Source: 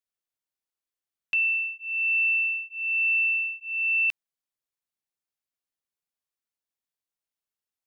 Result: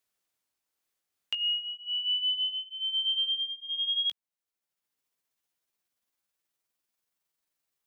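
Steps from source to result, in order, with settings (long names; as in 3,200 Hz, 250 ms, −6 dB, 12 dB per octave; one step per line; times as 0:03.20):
pitch glide at a constant tempo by +7 semitones starting unshifted
multiband upward and downward compressor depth 40%
level −2.5 dB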